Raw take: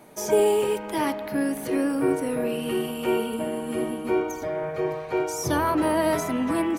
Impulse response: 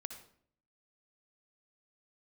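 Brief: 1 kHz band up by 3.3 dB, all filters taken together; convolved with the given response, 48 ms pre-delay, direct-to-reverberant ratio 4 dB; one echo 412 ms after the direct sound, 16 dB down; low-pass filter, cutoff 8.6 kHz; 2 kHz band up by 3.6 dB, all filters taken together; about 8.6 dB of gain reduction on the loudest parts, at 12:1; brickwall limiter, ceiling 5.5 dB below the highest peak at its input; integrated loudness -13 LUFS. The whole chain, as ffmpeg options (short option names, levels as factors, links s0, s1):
-filter_complex "[0:a]lowpass=8600,equalizer=f=1000:t=o:g=3,equalizer=f=2000:t=o:g=3.5,acompressor=threshold=0.0708:ratio=12,alimiter=limit=0.0944:level=0:latency=1,aecho=1:1:412:0.158,asplit=2[s0][s1];[1:a]atrim=start_sample=2205,adelay=48[s2];[s1][s2]afir=irnorm=-1:irlink=0,volume=0.891[s3];[s0][s3]amix=inputs=2:normalize=0,volume=5.01"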